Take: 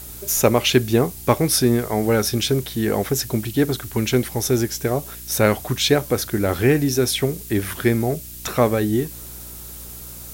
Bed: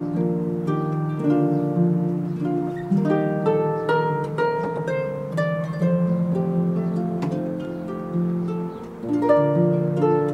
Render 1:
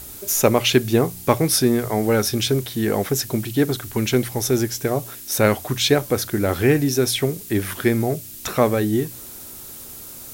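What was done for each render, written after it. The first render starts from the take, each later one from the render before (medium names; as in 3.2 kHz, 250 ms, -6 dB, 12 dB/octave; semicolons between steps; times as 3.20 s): de-hum 60 Hz, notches 3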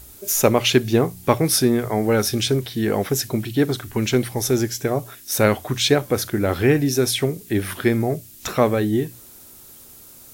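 noise print and reduce 7 dB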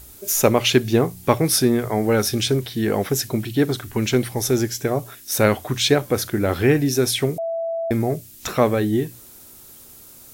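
7.38–7.91 s: bleep 663 Hz -22 dBFS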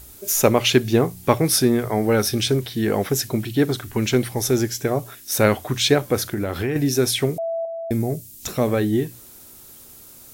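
1.83–2.47 s: band-stop 7 kHz; 6.30–6.76 s: compression 5:1, threshold -20 dBFS; 7.65–8.68 s: FFT filter 190 Hz 0 dB, 660 Hz -5 dB, 1.3 kHz -10 dB, 7.8 kHz +2 dB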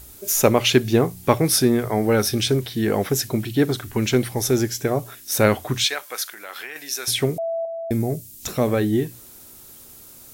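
5.84–7.08 s: high-pass 1.2 kHz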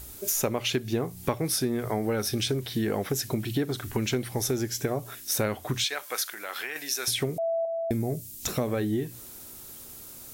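compression 5:1, threshold -25 dBFS, peak gain reduction 14 dB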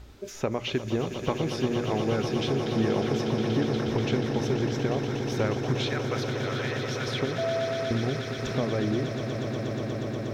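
distance through air 210 m; echo with a slow build-up 120 ms, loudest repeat 8, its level -10.5 dB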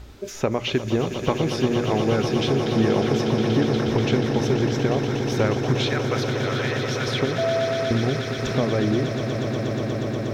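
trim +5.5 dB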